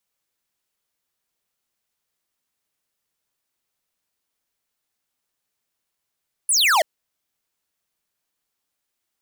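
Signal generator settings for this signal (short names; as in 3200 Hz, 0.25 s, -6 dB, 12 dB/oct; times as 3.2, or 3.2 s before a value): laser zap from 11000 Hz, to 580 Hz, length 0.33 s square, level -16.5 dB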